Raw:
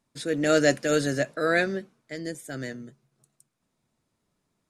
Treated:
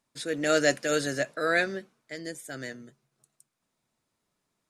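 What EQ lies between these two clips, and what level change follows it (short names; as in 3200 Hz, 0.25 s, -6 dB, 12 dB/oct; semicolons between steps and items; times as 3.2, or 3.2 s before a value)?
low shelf 410 Hz -8 dB; 0.0 dB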